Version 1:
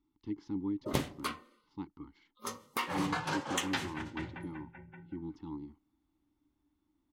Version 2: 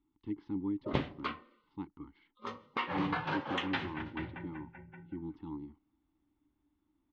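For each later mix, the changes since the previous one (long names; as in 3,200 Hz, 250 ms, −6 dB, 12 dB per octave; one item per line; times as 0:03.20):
master: add low-pass filter 3,500 Hz 24 dB per octave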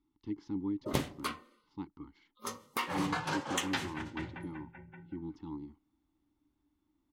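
master: remove low-pass filter 3,500 Hz 24 dB per octave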